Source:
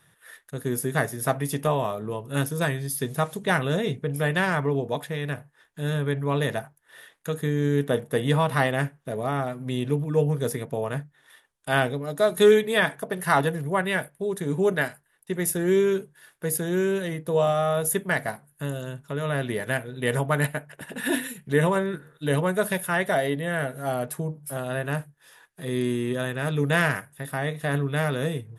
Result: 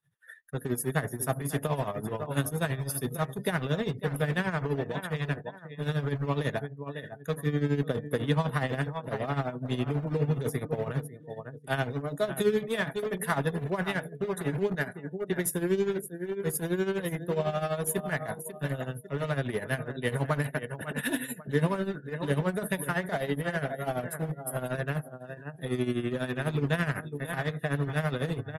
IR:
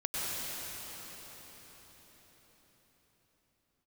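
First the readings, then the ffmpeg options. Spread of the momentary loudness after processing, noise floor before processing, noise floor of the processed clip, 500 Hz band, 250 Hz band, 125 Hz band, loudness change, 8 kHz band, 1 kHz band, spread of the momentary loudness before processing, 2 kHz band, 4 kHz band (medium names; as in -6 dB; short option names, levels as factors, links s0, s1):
7 LU, -64 dBFS, -48 dBFS, -6.5 dB, -4.0 dB, -3.0 dB, -5.5 dB, -5.0 dB, -6.5 dB, 10 LU, -6.5 dB, -6.5 dB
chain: -filter_complex "[0:a]aecho=1:1:547|1094|1641:0.237|0.0664|0.0186,acrossover=split=250[s0][s1];[s1]acompressor=threshold=0.0447:ratio=2.5[s2];[s0][s2]amix=inputs=2:normalize=0,asplit=2[s3][s4];[s4]aeval=exprs='(mod(21.1*val(0)+1,2)-1)/21.1':c=same,volume=0.316[s5];[s3][s5]amix=inputs=2:normalize=0,afftdn=nr=22:nf=-44,tremolo=f=12:d=0.73"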